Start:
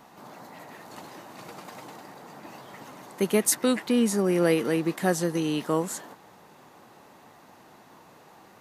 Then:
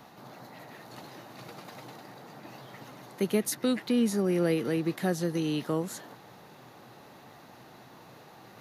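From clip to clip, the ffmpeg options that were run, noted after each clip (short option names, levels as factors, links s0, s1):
-filter_complex "[0:a]areverse,acompressor=mode=upward:threshold=0.00794:ratio=2.5,areverse,equalizer=f=125:t=o:w=0.33:g=9,equalizer=f=1000:t=o:w=0.33:g=-4,equalizer=f=4000:t=o:w=0.33:g=4,equalizer=f=8000:t=o:w=0.33:g=-8,acrossover=split=390[s0][s1];[s1]acompressor=threshold=0.02:ratio=1.5[s2];[s0][s2]amix=inputs=2:normalize=0,volume=0.75"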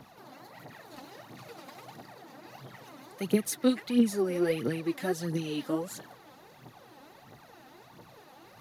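-af "aphaser=in_gain=1:out_gain=1:delay=4:decay=0.66:speed=1.5:type=triangular,volume=0.631"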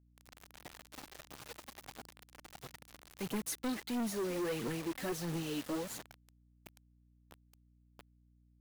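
-af "asoftclip=type=tanh:threshold=0.0335,acrusher=bits=6:mix=0:aa=0.000001,aeval=exprs='val(0)+0.000708*(sin(2*PI*60*n/s)+sin(2*PI*2*60*n/s)/2+sin(2*PI*3*60*n/s)/3+sin(2*PI*4*60*n/s)/4+sin(2*PI*5*60*n/s)/5)':c=same,volume=0.708"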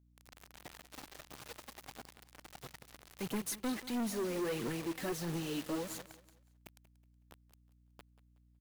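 -af "aecho=1:1:185|370|555:0.15|0.0479|0.0153"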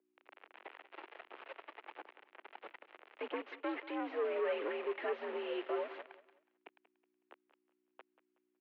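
-af "highpass=f=290:t=q:w=0.5412,highpass=f=290:t=q:w=1.307,lowpass=f=2800:t=q:w=0.5176,lowpass=f=2800:t=q:w=0.7071,lowpass=f=2800:t=q:w=1.932,afreqshift=67,volume=1.26"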